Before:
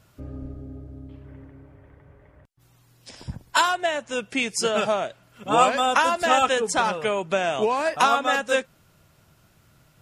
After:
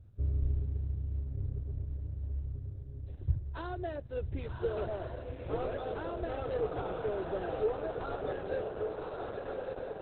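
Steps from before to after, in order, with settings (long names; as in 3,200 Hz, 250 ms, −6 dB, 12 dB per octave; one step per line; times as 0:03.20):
low-shelf EQ 140 Hz +7 dB
0:06.21–0:06.65: steady tone 420 Hz −47 dBFS
on a send: feedback delay with all-pass diffusion 1,150 ms, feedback 56%, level −3.5 dB
on the sum: soft clipping −16.5 dBFS, distortion −13 dB
drawn EQ curve 100 Hz 0 dB, 150 Hz −11 dB, 230 Hz −26 dB, 360 Hz −5 dB, 1,000 Hz −24 dB, 1,600 Hz −22 dB, 2,500 Hz −29 dB, 5,600 Hz −24 dB, 9,400 Hz −25 dB, 14,000 Hz −14 dB
level +3.5 dB
Opus 8 kbit/s 48,000 Hz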